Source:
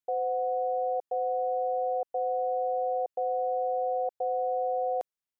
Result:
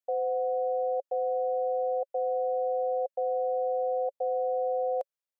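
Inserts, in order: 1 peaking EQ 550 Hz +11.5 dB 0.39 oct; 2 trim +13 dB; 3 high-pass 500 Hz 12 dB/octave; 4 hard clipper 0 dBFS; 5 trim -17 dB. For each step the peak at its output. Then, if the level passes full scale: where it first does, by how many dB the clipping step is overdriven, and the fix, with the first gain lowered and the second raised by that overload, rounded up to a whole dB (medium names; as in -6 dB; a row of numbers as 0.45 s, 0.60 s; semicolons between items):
-16.5 dBFS, -3.5 dBFS, -5.5 dBFS, -5.5 dBFS, -22.5 dBFS; nothing clips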